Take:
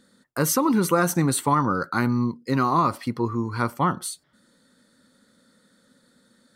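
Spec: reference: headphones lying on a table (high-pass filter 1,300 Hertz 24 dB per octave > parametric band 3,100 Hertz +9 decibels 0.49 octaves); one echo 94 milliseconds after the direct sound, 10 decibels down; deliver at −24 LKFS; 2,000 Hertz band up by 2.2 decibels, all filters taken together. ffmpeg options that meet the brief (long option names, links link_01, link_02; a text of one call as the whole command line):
ffmpeg -i in.wav -af "highpass=frequency=1300:width=0.5412,highpass=frequency=1300:width=1.3066,equalizer=frequency=2000:width_type=o:gain=3.5,equalizer=frequency=3100:width_type=o:width=0.49:gain=9,aecho=1:1:94:0.316,volume=4dB" out.wav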